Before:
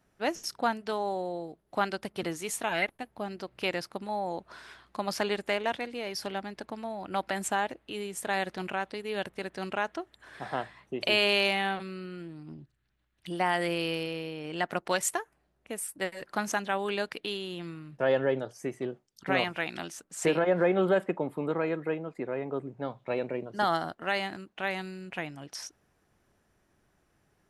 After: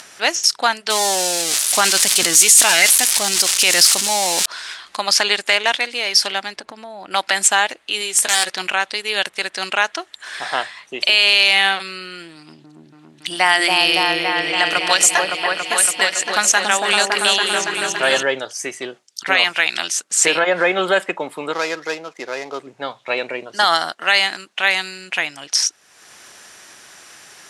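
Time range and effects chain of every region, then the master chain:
0:00.90–0:04.46: spike at every zero crossing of −25 dBFS + low-shelf EQ 330 Hz +7.5 dB + level that may fall only so fast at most 21 dB per second
0:06.56–0:07.11: tilt shelving filter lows +6.5 dB, about 1,100 Hz + downward compressor, threshold −38 dBFS
0:08.00–0:08.50: high-shelf EQ 8,900 Hz +5.5 dB + wrap-around overflow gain 21 dB + double-tracking delay 13 ms −8.5 dB
0:12.36–0:18.23: high-pass filter 63 Hz + notch filter 510 Hz, Q 13 + echo whose low-pass opens from repeat to repeat 281 ms, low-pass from 750 Hz, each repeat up 1 octave, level 0 dB
0:21.53–0:22.67: running median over 15 samples + low-shelf EQ 210 Hz −6.5 dB
whole clip: upward compression, threshold −42 dBFS; meter weighting curve ITU-R 468; boost into a limiter +13 dB; level −1 dB

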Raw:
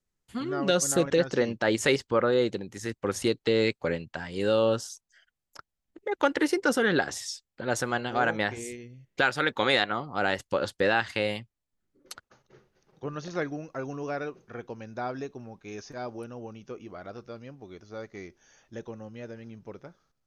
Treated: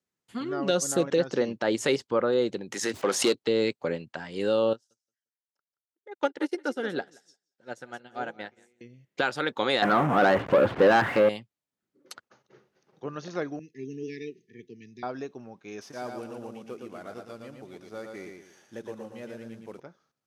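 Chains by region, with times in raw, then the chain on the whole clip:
0:02.72–0:03.35: parametric band 94 Hz −14 dB 0.31 octaves + mid-hump overdrive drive 17 dB, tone 7,900 Hz, clips at −12.5 dBFS + background raised ahead of every attack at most 79 dB per second
0:04.73–0:08.81: notch filter 1,100 Hz, Q 7.2 + repeating echo 175 ms, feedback 28%, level −12.5 dB + expander for the loud parts 2.5 to 1, over −44 dBFS
0:09.82–0:11.29: converter with a step at zero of −26 dBFS + low-pass filter 2,100 Hz 24 dB per octave + leveller curve on the samples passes 2
0:13.59–0:15.03: linear-phase brick-wall band-stop 460–1,700 Hz + multiband upward and downward expander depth 70%
0:15.81–0:19.80: variable-slope delta modulation 64 kbit/s + repeating echo 114 ms, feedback 33%, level −4.5 dB
whole clip: dynamic equaliser 1,900 Hz, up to −5 dB, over −39 dBFS, Q 1.2; high-pass filter 160 Hz 12 dB per octave; high-shelf EQ 7,300 Hz −5 dB

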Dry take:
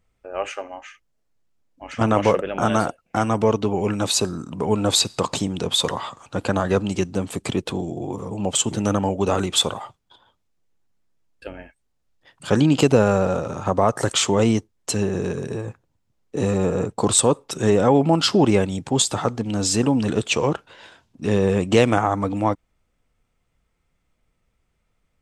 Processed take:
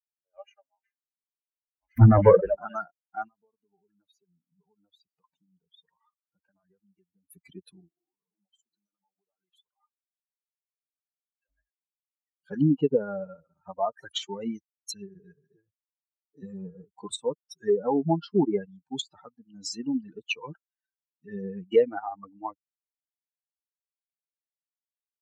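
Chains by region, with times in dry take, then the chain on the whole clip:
0:01.97–0:02.55: converter with a step at zero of −27.5 dBFS + parametric band 110 Hz +8.5 dB 0.74 octaves + leveller curve on the samples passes 2
0:03.28–0:07.29: downward compressor 3 to 1, threshold −30 dBFS + high-shelf EQ 3,900 Hz −9.5 dB + notch filter 4,100 Hz, Q 8.1
0:07.88–0:11.50: low-shelf EQ 140 Hz −11 dB + downward compressor 16 to 1, threshold −32 dBFS
whole clip: spectral dynamics exaggerated over time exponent 3; dynamic equaliser 460 Hz, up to +4 dB, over −36 dBFS, Q 3.1; treble cut that deepens with the level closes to 1,100 Hz, closed at −19.5 dBFS; level −1.5 dB

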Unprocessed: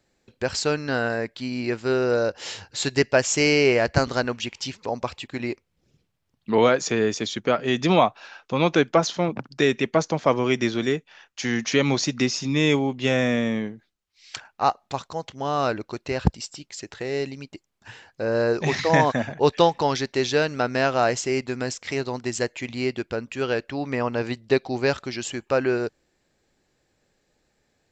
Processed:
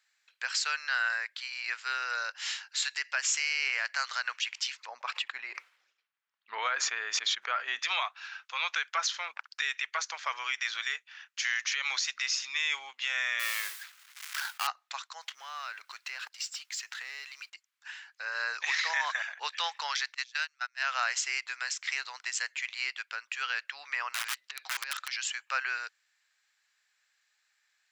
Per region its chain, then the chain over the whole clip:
0:04.87–0:07.79: spectral tilt −4.5 dB per octave + level that may fall only so fast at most 64 dB per second
0:13.39–0:14.67: gap after every zero crossing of 0.15 ms + noise that follows the level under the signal 15 dB + envelope flattener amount 50%
0:15.21–0:17.50: mu-law and A-law mismatch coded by mu + downward compressor 3 to 1, threshold −30 dBFS
0:20.14–0:20.83: noise gate −21 dBFS, range −29 dB + high-pass filter 740 Hz + high-shelf EQ 6,800 Hz +9.5 dB
0:24.10–0:25.08: compressor whose output falls as the input rises −24 dBFS, ratio −0.5 + wrap-around overflow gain 20.5 dB
whole clip: high-pass filter 1,400 Hz 24 dB per octave; high-shelf EQ 2,100 Hz −7 dB; brickwall limiter −24 dBFS; level +5 dB

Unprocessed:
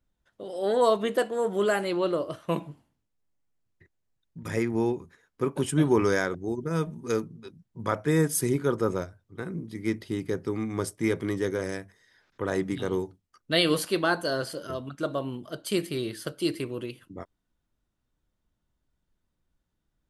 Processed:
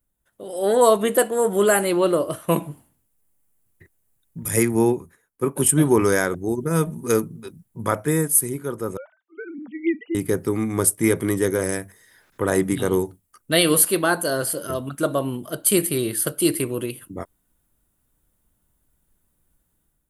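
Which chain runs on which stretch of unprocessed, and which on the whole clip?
0:04.45–0:05.68: high-shelf EQ 4,900 Hz +4.5 dB + multiband upward and downward expander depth 70%
0:08.97–0:10.15: three sine waves on the formant tracks + high-pass filter 370 Hz 6 dB per octave + notch filter 1,100 Hz, Q 8.2
whole clip: high shelf with overshoot 7,400 Hz +13.5 dB, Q 1.5; automatic gain control gain up to 9 dB; level −1 dB

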